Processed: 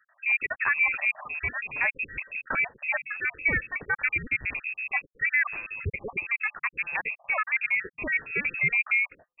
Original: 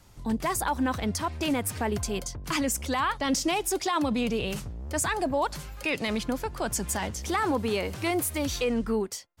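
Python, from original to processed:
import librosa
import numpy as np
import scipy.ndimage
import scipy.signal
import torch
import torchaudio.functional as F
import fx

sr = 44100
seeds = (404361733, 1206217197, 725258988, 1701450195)

y = fx.spec_dropout(x, sr, seeds[0], share_pct=49)
y = fx.freq_invert(y, sr, carrier_hz=2600)
y = y * librosa.db_to_amplitude(3.0)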